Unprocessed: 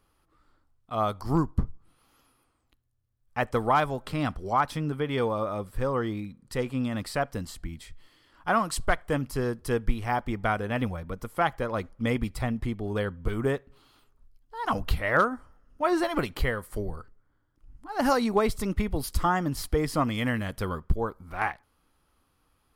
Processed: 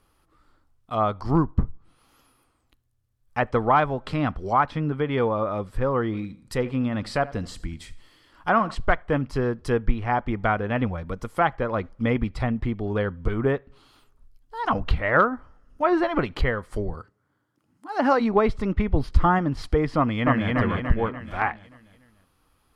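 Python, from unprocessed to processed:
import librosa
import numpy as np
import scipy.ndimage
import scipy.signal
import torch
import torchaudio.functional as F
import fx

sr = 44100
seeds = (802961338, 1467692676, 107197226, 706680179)

y = fx.echo_feedback(x, sr, ms=81, feedback_pct=39, wet_db=-18.5, at=(6.12, 8.74), fade=0.02)
y = fx.highpass(y, sr, hz=fx.line((16.93, 71.0), (18.19, 250.0)), slope=24, at=(16.93, 18.19), fade=0.02)
y = fx.low_shelf(y, sr, hz=230.0, db=6.0, at=(18.93, 19.39))
y = fx.echo_throw(y, sr, start_s=19.97, length_s=0.58, ms=290, feedback_pct=45, wet_db=-1.0)
y = fx.env_lowpass_down(y, sr, base_hz=2600.0, full_db=-25.0)
y = F.gain(torch.from_numpy(y), 4.0).numpy()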